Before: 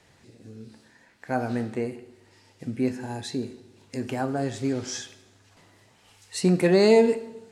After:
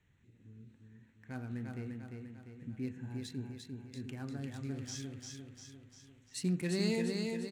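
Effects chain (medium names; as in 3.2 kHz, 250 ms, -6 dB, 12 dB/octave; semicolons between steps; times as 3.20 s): local Wiener filter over 9 samples; amplifier tone stack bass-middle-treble 6-0-2; on a send: feedback delay 348 ms, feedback 52%, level -4 dB; on the sum: trim +6 dB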